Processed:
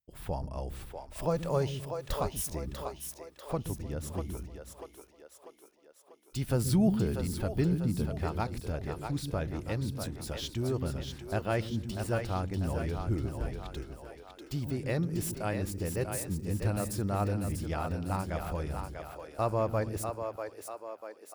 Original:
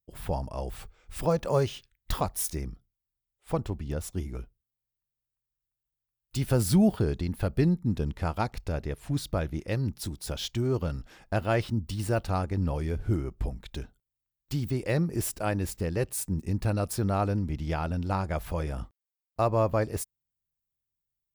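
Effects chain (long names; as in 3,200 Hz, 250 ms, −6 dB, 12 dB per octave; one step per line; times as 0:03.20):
echo with a time of its own for lows and highs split 340 Hz, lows 130 ms, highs 643 ms, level −6 dB
level −4.5 dB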